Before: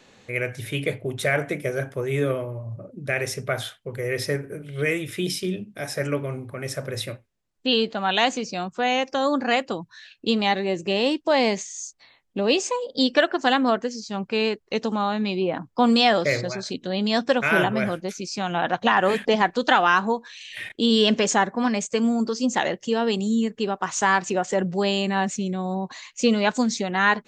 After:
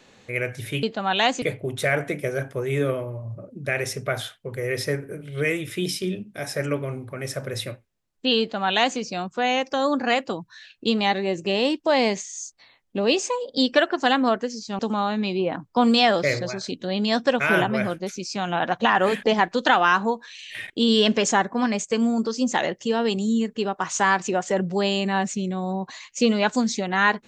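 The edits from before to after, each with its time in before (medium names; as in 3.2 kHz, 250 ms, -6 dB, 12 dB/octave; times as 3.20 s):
7.81–8.40 s: copy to 0.83 s
14.20–14.81 s: delete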